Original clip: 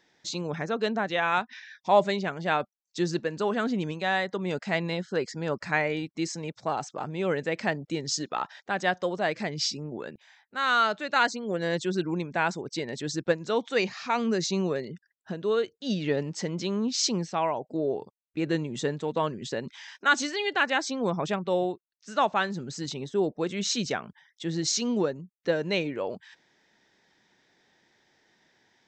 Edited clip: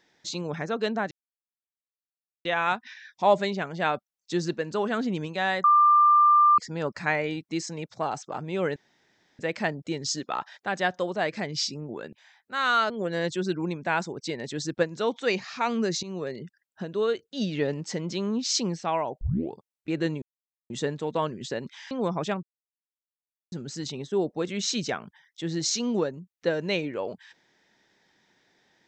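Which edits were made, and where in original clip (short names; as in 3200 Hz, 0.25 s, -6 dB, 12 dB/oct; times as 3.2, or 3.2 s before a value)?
1.11 insert silence 1.34 s
4.3–5.24 bleep 1190 Hz -14.5 dBFS
7.42 insert room tone 0.63 s
10.93–11.39 cut
14.52–14.88 fade in, from -15 dB
17.7 tape start 0.31 s
18.71 insert silence 0.48 s
19.92–20.93 cut
21.45–22.54 mute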